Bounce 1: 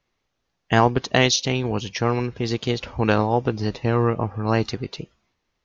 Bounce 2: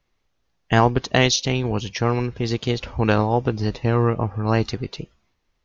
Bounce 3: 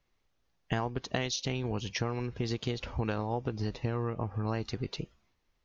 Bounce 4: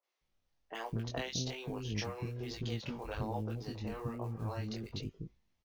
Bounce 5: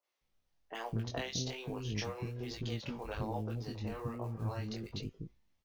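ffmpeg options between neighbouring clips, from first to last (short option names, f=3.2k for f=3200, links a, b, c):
-af "lowshelf=f=62:g=10.5"
-af "acompressor=threshold=-24dB:ratio=6,volume=-4.5dB"
-filter_complex "[0:a]acrusher=bits=8:mode=log:mix=0:aa=0.000001,flanger=delay=18:depth=5.3:speed=1.2,acrossover=split=380|1400[a][b][c];[c]adelay=30[d];[a]adelay=210[e];[e][b][d]amix=inputs=3:normalize=0,volume=-1.5dB"
-af "flanger=delay=3.3:depth=7:regen=86:speed=0.37:shape=sinusoidal,volume=4.5dB"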